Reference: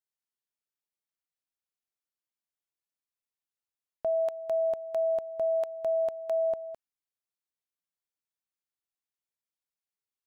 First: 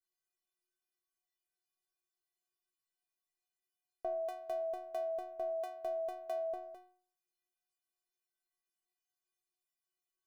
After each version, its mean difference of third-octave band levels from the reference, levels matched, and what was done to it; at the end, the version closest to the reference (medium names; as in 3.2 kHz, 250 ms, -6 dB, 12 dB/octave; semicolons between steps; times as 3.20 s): 6.0 dB: peaking EQ 480 Hz +8.5 dB 0.52 oct; inharmonic resonator 360 Hz, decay 0.54 s, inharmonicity 0.008; trim +18 dB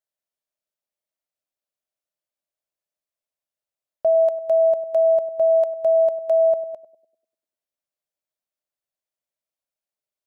2.0 dB: peaking EQ 610 Hz +14 dB 0.39 oct; on a send: band-passed feedback delay 99 ms, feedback 58%, band-pass 300 Hz, level -9.5 dB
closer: second